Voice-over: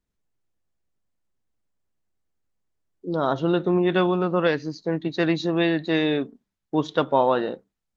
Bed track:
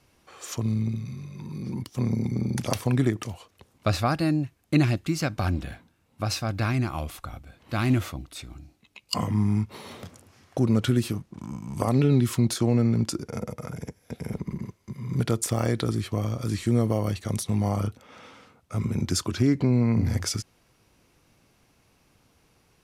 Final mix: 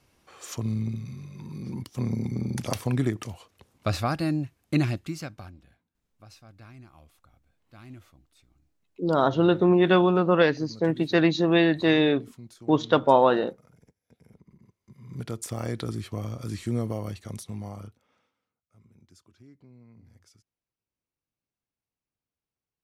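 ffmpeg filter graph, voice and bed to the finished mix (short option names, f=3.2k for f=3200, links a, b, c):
-filter_complex "[0:a]adelay=5950,volume=1.5dB[a];[1:a]volume=15dB,afade=t=out:st=4.77:d=0.75:silence=0.0944061,afade=t=in:st=14.61:d=1.17:silence=0.133352,afade=t=out:st=16.78:d=1.54:silence=0.0501187[b];[a][b]amix=inputs=2:normalize=0"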